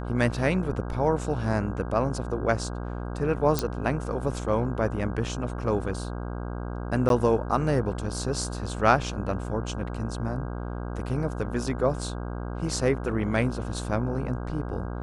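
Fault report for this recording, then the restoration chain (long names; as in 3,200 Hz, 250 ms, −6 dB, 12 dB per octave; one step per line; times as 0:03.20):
mains buzz 60 Hz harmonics 27 −33 dBFS
0:03.59: click −9 dBFS
0:07.09–0:07.10: drop-out 12 ms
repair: click removal
hum removal 60 Hz, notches 27
repair the gap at 0:07.09, 12 ms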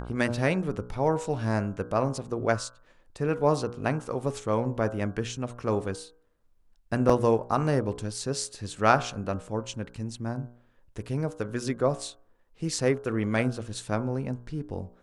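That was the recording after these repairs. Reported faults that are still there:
none of them is left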